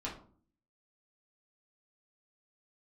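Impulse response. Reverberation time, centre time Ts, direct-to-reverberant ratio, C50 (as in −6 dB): 0.45 s, 25 ms, −5.5 dB, 8.0 dB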